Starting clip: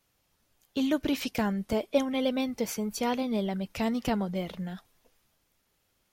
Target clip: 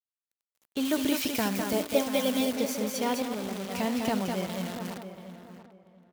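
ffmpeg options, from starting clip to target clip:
-filter_complex "[0:a]asplit=2[a][b];[b]aecho=0:1:70|203|215|802:0.158|0.562|0.266|0.178[c];[a][c]amix=inputs=2:normalize=0,acrusher=bits=7:dc=4:mix=0:aa=0.000001,asettb=1/sr,asplit=3[d][e][f];[d]atrim=end=0.854[g];[e]atrim=start=0.85:end=2.56,asetpts=PTS-STARTPTS,afade=t=in:d=0.004:c=qsin,afade=t=out:st=1.706:d=0.004:c=qsin,highshelf=f=5.5k:g=7[h];[f]atrim=start=2.556[i];[g][h]acrossfade=d=0.004:c1=hsin:c2=qsin[j];[j][i]acrossfade=d=0.004:c1=qsin:c2=hsin,asettb=1/sr,asplit=3[k][l][m];[k]atrim=end=3.224[n];[l]atrim=start=3.22:end=3.71,asetpts=PTS-STARTPTS,afade=t=in:d=0.004:c=qsin,afade=t=out:st=0.486:d=0.004:c=qsin,aeval=exprs='(tanh(28.2*val(0)+0.6)-tanh(0.6))/28.2':c=same[o];[m]atrim=start=3.706[p];[n][o]acrossfade=d=0.004:c1=hsin:c2=qsin[q];[q][p]acrossfade=d=0.004:c1=qsin:c2=hsin,highpass=f=170:p=1,asplit=2[r][s];[s]adelay=685,lowpass=f=1.6k:p=1,volume=-10.5dB,asplit=2[t][u];[u]adelay=685,lowpass=f=1.6k:p=1,volume=0.24,asplit=2[v][w];[w]adelay=685,lowpass=f=1.6k:p=1,volume=0.24[x];[t][v][x]amix=inputs=3:normalize=0[y];[r][y]amix=inputs=2:normalize=0"

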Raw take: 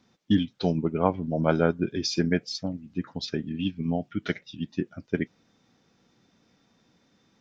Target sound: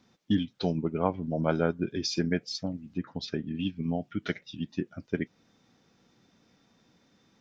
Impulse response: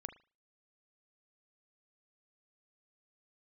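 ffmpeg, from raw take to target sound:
-filter_complex "[0:a]asettb=1/sr,asplit=3[a][b][c];[a]atrim=end=2.974[d];[b]atrim=start=2.97:end=3.55,asetpts=PTS-STARTPTS,afade=t=in:d=0.004:c=qsin,afade=t=out:st=0.576:d=0.004:c=qsin,highshelf=f=5.1k:g=-8[e];[c]atrim=start=3.546[f];[d][e]acrossfade=d=0.004:c1=hsin:c2=qsin[g];[g][f]acrossfade=d=0.004:c1=qsin:c2=hsin,asplit=2[h][i];[i]acompressor=threshold=-32dB:ratio=6,volume=-1dB[j];[h][j]amix=inputs=2:normalize=0,volume=-5.5dB"

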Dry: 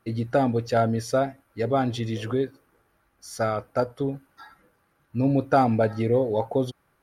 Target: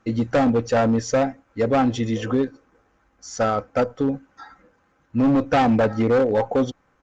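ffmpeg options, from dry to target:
-af "highshelf=f=5.8k:g=-10.5,aecho=1:1:3.9:0.4,aexciter=amount=4.6:drive=4.2:freq=6k,aresample=16000,asoftclip=type=hard:threshold=-19.5dB,aresample=44100,volume=5.5dB" -ar 48000 -c:a libopus -b:a 48k

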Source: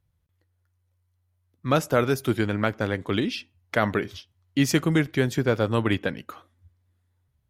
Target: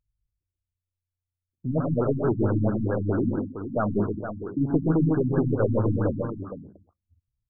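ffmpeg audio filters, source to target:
-af "bandreject=f=65.78:t=h:w=4,bandreject=f=131.56:t=h:w=4,bandreject=f=197.34:t=h:w=4,bandreject=f=263.12:t=h:w=4,anlmdn=0.0631,aresample=16000,asoftclip=type=tanh:threshold=-20.5dB,aresample=44100,aecho=1:1:85|134|153|226|464|515:0.251|0.531|0.473|0.158|0.335|0.2,afftfilt=real='re*lt(b*sr/1024,280*pow(1700/280,0.5+0.5*sin(2*PI*4.5*pts/sr)))':imag='im*lt(b*sr/1024,280*pow(1700/280,0.5+0.5*sin(2*PI*4.5*pts/sr)))':win_size=1024:overlap=0.75,volume=3dB"

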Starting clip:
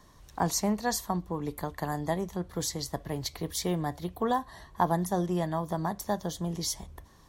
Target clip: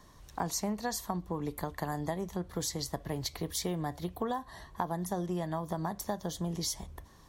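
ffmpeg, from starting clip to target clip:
-af "acompressor=threshold=-30dB:ratio=5"

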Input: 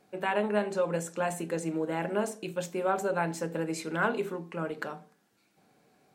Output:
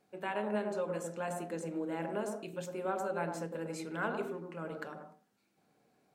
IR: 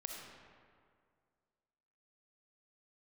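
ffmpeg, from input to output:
-filter_complex "[0:a]asplit=2[a][b];[b]lowpass=1.1k[c];[1:a]atrim=start_sample=2205,atrim=end_sample=4410,adelay=104[d];[c][d]afir=irnorm=-1:irlink=0,volume=1dB[e];[a][e]amix=inputs=2:normalize=0,volume=-8dB"

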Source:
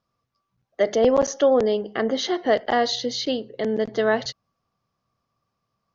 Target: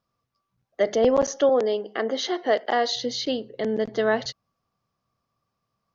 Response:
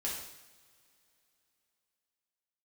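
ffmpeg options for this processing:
-filter_complex "[0:a]asettb=1/sr,asplit=3[a][b][c];[a]atrim=end=1.494[d];[b]atrim=start=1.49:end=2.96,asetpts=PTS-STARTPTS,afade=t=in:d=0.004:c=qsin,afade=t=out:st=1.466:d=0.004:c=qsin,highpass=290[e];[c]atrim=start=2.956[f];[d][e]acrossfade=d=0.004:c1=hsin:c2=qsin[g];[g][f]acrossfade=d=0.004:c1=qsin:c2=hsin,volume=-1.5dB"

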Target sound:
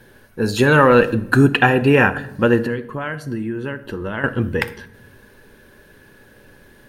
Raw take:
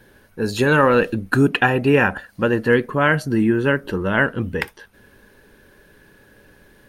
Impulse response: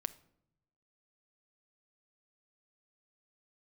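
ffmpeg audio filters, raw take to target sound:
-filter_complex "[0:a]asettb=1/sr,asplit=3[a][b][c];[a]atrim=end=2.664[d];[b]atrim=start=2.66:end=4.24,asetpts=PTS-STARTPTS,afade=t=in:d=0.004:c=qsin,afade=t=out:st=1.576:d=0.004:c=qsin,acompressor=threshold=-28dB:ratio=4[e];[c]atrim=start=4.236[f];[d][e]acrossfade=d=0.004:c1=hsin:c2=qsin[g];[g][f]acrossfade=d=0.004:c1=qsin:c2=hsin[h];[1:a]atrim=start_sample=2205,asetrate=33957,aresample=44100[i];[h][i]afir=irnorm=-1:irlink=0,volume=2.5dB"

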